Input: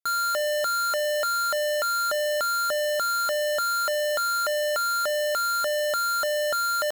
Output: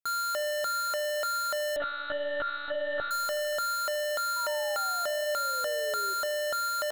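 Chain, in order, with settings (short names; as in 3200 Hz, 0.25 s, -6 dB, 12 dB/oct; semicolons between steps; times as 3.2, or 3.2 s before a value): 1.76–3.11 monotone LPC vocoder at 8 kHz 290 Hz; 4.36–6.14 painted sound fall 380–1000 Hz -38 dBFS; analogue delay 78 ms, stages 1024, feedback 84%, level -19 dB; gain -5 dB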